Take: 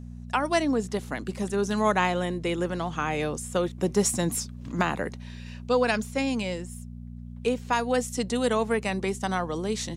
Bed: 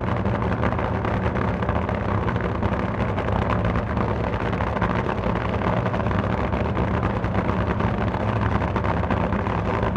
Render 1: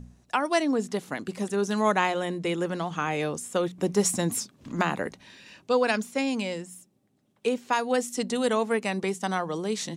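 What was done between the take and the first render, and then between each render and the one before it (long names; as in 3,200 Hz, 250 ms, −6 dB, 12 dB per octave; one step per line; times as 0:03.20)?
hum removal 60 Hz, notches 4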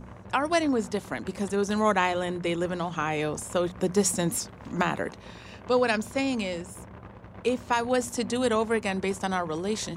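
mix in bed −22.5 dB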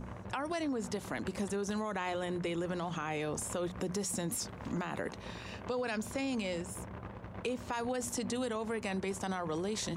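brickwall limiter −23.5 dBFS, peak gain reduction 12 dB
downward compressor 3 to 1, threshold −33 dBFS, peak gain reduction 5.5 dB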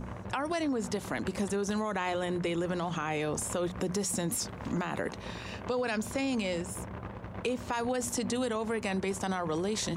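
level +4 dB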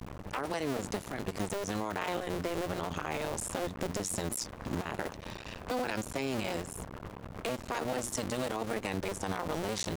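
sub-harmonics by changed cycles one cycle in 2, muted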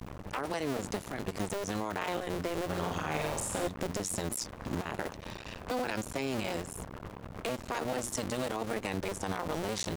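0:02.65–0:03.68: flutter between parallel walls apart 7.8 metres, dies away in 0.62 s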